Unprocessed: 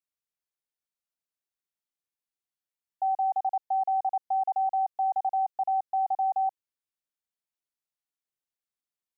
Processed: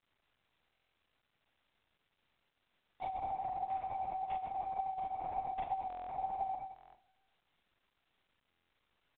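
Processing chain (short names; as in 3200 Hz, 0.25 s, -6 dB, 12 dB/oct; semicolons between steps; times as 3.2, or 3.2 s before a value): block floating point 3-bit; treble ducked by the level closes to 840 Hz, closed at -27 dBFS; 3.3–4.92 HPF 480 Hz 6 dB/oct; limiter -33 dBFS, peak gain reduction 9.5 dB; outdoor echo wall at 19 m, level -8 dB; Schroeder reverb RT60 0.79 s, combs from 29 ms, DRR -2.5 dB; LPC vocoder at 8 kHz whisper; stuck buffer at 0.72/5.88/6.74/8.49, samples 1024, times 8; µ-law 64 kbps 8000 Hz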